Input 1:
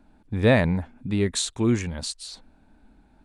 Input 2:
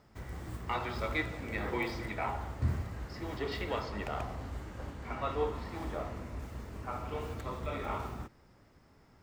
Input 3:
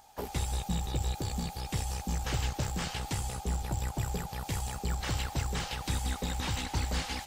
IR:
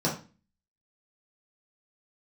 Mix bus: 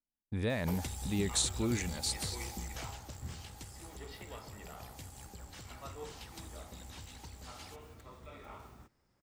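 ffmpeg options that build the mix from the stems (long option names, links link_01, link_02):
-filter_complex "[0:a]agate=range=-36dB:threshold=-46dB:ratio=16:detection=peak,alimiter=limit=-16.5dB:level=0:latency=1,volume=-8.5dB[link_01];[1:a]adelay=600,volume=-14dB[link_02];[2:a]equalizer=frequency=90:width_type=o:width=0.32:gain=7.5,acompressor=threshold=-38dB:ratio=6,adelay=500,volume=-1.5dB,afade=type=out:start_time=2.57:duration=0.67:silence=0.354813[link_03];[link_01][link_02][link_03]amix=inputs=3:normalize=0,highshelf=frequency=3900:gain=8.5"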